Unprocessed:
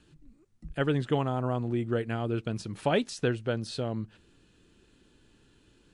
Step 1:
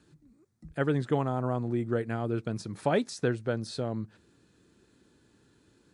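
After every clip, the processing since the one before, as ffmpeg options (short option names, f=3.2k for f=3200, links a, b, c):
-af "highpass=82,equalizer=f=2.9k:t=o:w=0.46:g=-10"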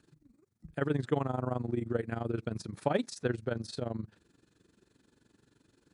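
-af "tremolo=f=23:d=0.824"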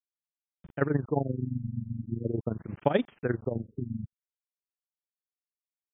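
-af "aeval=exprs='val(0)*gte(abs(val(0)),0.00316)':c=same,tremolo=f=8.4:d=0.51,afftfilt=real='re*lt(b*sr/1024,220*pow(3700/220,0.5+0.5*sin(2*PI*0.42*pts/sr)))':imag='im*lt(b*sr/1024,220*pow(3700/220,0.5+0.5*sin(2*PI*0.42*pts/sr)))':win_size=1024:overlap=0.75,volume=6dB"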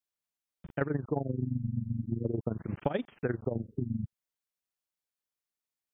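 -af "acompressor=threshold=-30dB:ratio=6,volume=3dB"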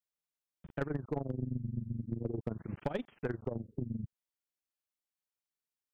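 -af "aeval=exprs='0.2*(cos(1*acos(clip(val(0)/0.2,-1,1)))-cos(1*PI/2))+0.0447*(cos(2*acos(clip(val(0)/0.2,-1,1)))-cos(2*PI/2))+0.0282*(cos(3*acos(clip(val(0)/0.2,-1,1)))-cos(3*PI/2))':c=same,asoftclip=type=hard:threshold=-24dB"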